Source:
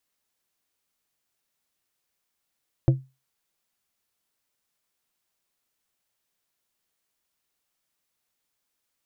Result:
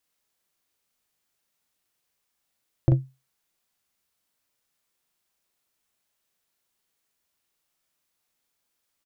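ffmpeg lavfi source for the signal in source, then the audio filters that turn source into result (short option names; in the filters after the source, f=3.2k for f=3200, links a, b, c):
-f lavfi -i "aevalsrc='0.282*pow(10,-3*t/0.26)*sin(2*PI*132*t)+0.126*pow(10,-3*t/0.137)*sin(2*PI*330*t)+0.0562*pow(10,-3*t/0.099)*sin(2*PI*528*t)+0.0251*pow(10,-3*t/0.084)*sin(2*PI*660*t)':d=0.89:s=44100"
-filter_complex "[0:a]asplit=2[a][b];[b]adelay=39,volume=-3.5dB[c];[a][c]amix=inputs=2:normalize=0"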